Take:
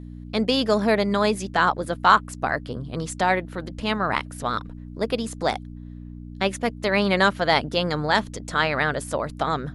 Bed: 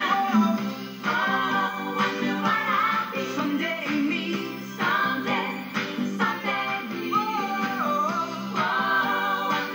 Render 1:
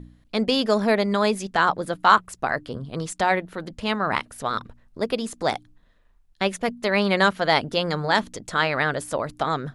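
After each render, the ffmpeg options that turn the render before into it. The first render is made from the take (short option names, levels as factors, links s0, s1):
-af "bandreject=f=60:t=h:w=4,bandreject=f=120:t=h:w=4,bandreject=f=180:t=h:w=4,bandreject=f=240:t=h:w=4,bandreject=f=300:t=h:w=4"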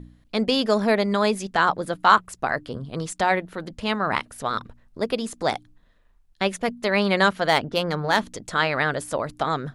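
-filter_complex "[0:a]asettb=1/sr,asplit=3[s0][s1][s2];[s0]atrim=end=7.484[s3];[s1]atrim=start=7.48:end=8.18,asetpts=PTS-STARTPTS,afade=t=in:d=0.004:c=qsin,afade=t=out:st=0.696:d=0.004:c=qsin,adynamicsmooth=sensitivity=1.5:basefreq=3400[s4];[s2]atrim=start=8.176[s5];[s3][s4]acrossfade=d=0.004:c1=hsin:c2=qsin[s6];[s6][s5]acrossfade=d=0.004:c1=qsin:c2=hsin"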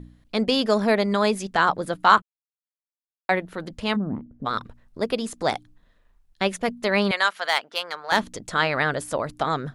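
-filter_complex "[0:a]asplit=3[s0][s1][s2];[s0]afade=t=out:st=3.95:d=0.02[s3];[s1]lowpass=f=250:t=q:w=2.6,afade=t=in:st=3.95:d=0.02,afade=t=out:st=4.45:d=0.02[s4];[s2]afade=t=in:st=4.45:d=0.02[s5];[s3][s4][s5]amix=inputs=3:normalize=0,asettb=1/sr,asplit=3[s6][s7][s8];[s6]atrim=end=7.114[s9];[s7]atrim=start=7.11:end=8.12,asetpts=PTS-STARTPTS,afade=t=in:d=0.004:c=qsin,afade=t=out:st=1.006:d=0.004:c=qsin,highpass=950[s10];[s8]atrim=start=8.116[s11];[s9][s10]acrossfade=d=0.004:c1=hsin:c2=qsin[s12];[s12][s11]acrossfade=d=0.004:c1=qsin:c2=hsin,asplit=3[s13][s14][s15];[s13]atrim=end=2.22,asetpts=PTS-STARTPTS,afade=t=out:st=2.216:d=0.004:c=hsin[s16];[s14]atrim=start=2.22:end=3.29,asetpts=PTS-STARTPTS,volume=0[s17];[s15]atrim=start=3.29,asetpts=PTS-STARTPTS,afade=t=in:d=0.004:c=hsin[s18];[s16][s17][s18]concat=n=3:v=0:a=1"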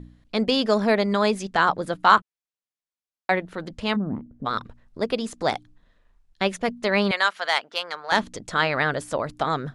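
-af "lowpass=8500"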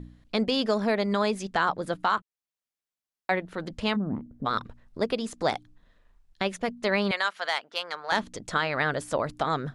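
-af "alimiter=limit=0.211:level=0:latency=1:release=450"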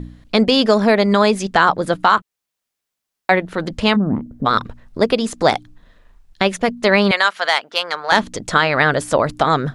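-af "volume=3.76"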